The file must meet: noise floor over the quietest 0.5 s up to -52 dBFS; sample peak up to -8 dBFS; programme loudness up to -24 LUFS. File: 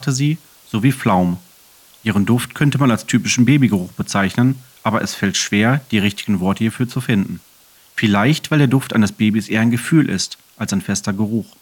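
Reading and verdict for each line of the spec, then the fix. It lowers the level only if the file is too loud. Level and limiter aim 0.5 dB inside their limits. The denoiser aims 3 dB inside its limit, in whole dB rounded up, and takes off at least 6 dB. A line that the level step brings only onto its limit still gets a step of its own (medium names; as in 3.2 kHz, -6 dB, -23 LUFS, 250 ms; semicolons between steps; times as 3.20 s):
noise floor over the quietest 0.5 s -49 dBFS: fail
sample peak -2.5 dBFS: fail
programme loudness -17.5 LUFS: fail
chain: trim -7 dB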